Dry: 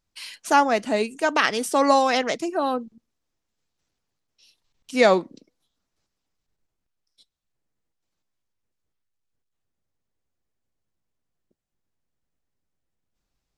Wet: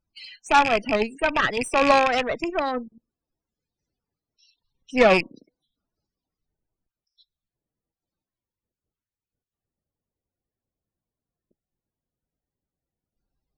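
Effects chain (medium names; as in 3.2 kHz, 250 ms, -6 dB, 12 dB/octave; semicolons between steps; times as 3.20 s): rattle on loud lows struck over -33 dBFS, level -9 dBFS; loudest bins only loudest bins 32; Chebyshev shaper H 6 -17 dB, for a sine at -4 dBFS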